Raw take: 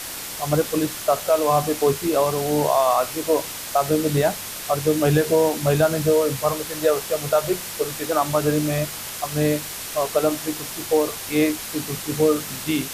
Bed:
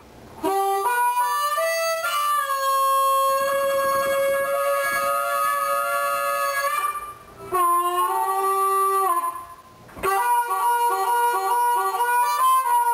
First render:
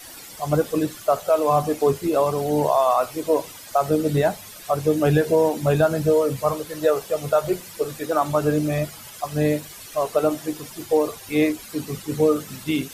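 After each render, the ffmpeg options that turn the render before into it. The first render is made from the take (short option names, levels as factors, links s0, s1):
-af "afftdn=nr=13:nf=-33"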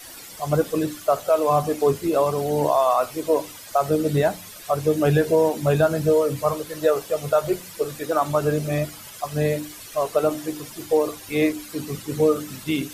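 -af "equalizer=f=820:t=o:w=0.26:g=-2,bandreject=f=60:t=h:w=6,bandreject=f=120:t=h:w=6,bandreject=f=180:t=h:w=6,bandreject=f=240:t=h:w=6,bandreject=f=300:t=h:w=6"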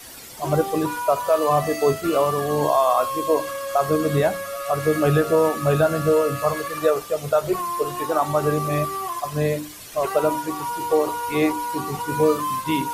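-filter_complex "[1:a]volume=0.398[s0];[0:a][s0]amix=inputs=2:normalize=0"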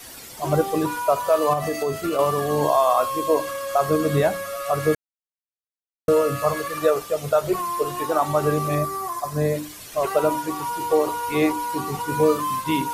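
-filter_complex "[0:a]asettb=1/sr,asplit=3[s0][s1][s2];[s0]atrim=end=1.534[s3];[s1]atrim=start=1.53:end=2.19,asetpts=PTS-STARTPTS,afade=t=in:d=0.004:c=qsin,afade=t=out:st=0.656:d=0.004:c=qsin,acompressor=threshold=0.1:ratio=5:attack=3.2:release=140:knee=1:detection=peak[s4];[s2]atrim=start=2.186[s5];[s3][s4]acrossfade=d=0.004:c1=hsin:c2=qsin[s6];[s6][s5]acrossfade=d=0.004:c1=qsin:c2=hsin,asettb=1/sr,asplit=3[s7][s8][s9];[s7]atrim=end=8.754[s10];[s8]atrim=start=8.75:end=9.55,asetpts=PTS-STARTPTS,afade=t=in:d=0.004:c=qsin,afade=t=out:st=0.796:d=0.004:c=qsin,equalizer=f=2900:w=2:g=-10.5[s11];[s9]atrim=start=9.546[s12];[s10][s11]acrossfade=d=0.004:c1=hsin:c2=qsin[s13];[s13][s12]acrossfade=d=0.004:c1=qsin:c2=hsin,asplit=3[s14][s15][s16];[s14]atrim=end=4.95,asetpts=PTS-STARTPTS,afade=t=out:st=4.946:d=0.004:c=hsin[s17];[s15]atrim=start=4.95:end=6.08,asetpts=PTS-STARTPTS,volume=0[s18];[s16]atrim=start=6.08,asetpts=PTS-STARTPTS,afade=t=in:d=0.004:c=hsin[s19];[s17][s18][s19]concat=n=3:v=0:a=1"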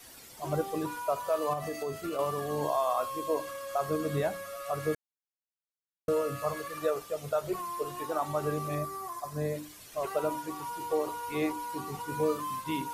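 -af "volume=0.299"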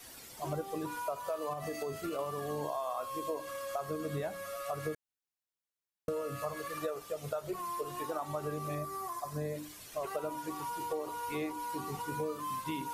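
-af "acompressor=threshold=0.02:ratio=4"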